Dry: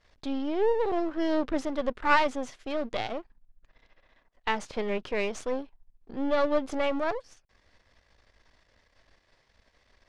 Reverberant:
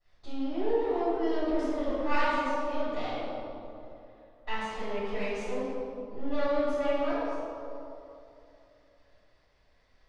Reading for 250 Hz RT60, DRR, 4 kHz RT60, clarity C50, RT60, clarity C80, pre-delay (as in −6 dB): 2.8 s, −17.5 dB, 1.5 s, −4.0 dB, 2.8 s, −1.5 dB, 3 ms